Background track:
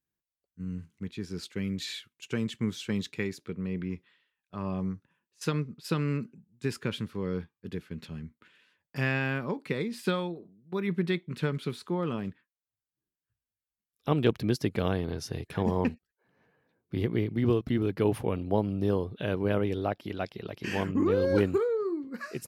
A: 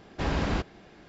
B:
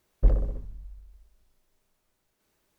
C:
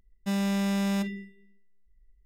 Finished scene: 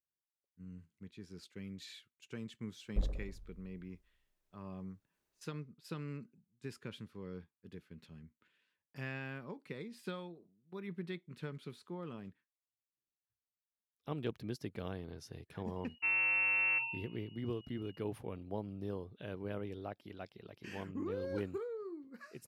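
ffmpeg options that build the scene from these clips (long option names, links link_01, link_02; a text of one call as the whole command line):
ffmpeg -i bed.wav -i cue0.wav -i cue1.wav -i cue2.wav -filter_complex "[0:a]volume=-14dB[link_01];[3:a]lowpass=frequency=2500:width_type=q:width=0.5098,lowpass=frequency=2500:width_type=q:width=0.6013,lowpass=frequency=2500:width_type=q:width=0.9,lowpass=frequency=2500:width_type=q:width=2.563,afreqshift=-2900[link_02];[2:a]atrim=end=2.78,asetpts=PTS-STARTPTS,volume=-13dB,afade=type=in:duration=0.004:curve=hsin,afade=type=out:start_time=2.776:duration=0.004:curve=hsin,adelay=2730[link_03];[link_02]atrim=end=2.25,asetpts=PTS-STARTPTS,volume=-5dB,afade=type=in:duration=0.004:curve=hsin,afade=type=out:start_time=2.246:duration=0.004:curve=hsin,adelay=15760[link_04];[link_01][link_03][link_04]amix=inputs=3:normalize=0" out.wav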